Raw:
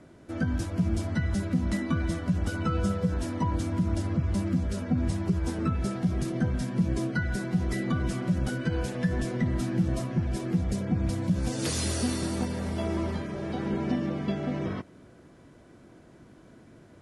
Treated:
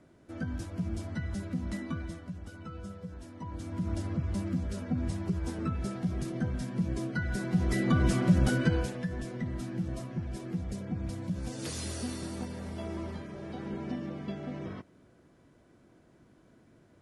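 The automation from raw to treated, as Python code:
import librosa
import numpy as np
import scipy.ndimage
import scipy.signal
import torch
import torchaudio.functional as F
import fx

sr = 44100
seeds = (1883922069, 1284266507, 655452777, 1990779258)

y = fx.gain(x, sr, db=fx.line((1.88, -7.5), (2.4, -15.5), (3.34, -15.5), (3.9, -5.0), (7.07, -5.0), (8.06, 3.5), (8.64, 3.5), (9.07, -8.0)))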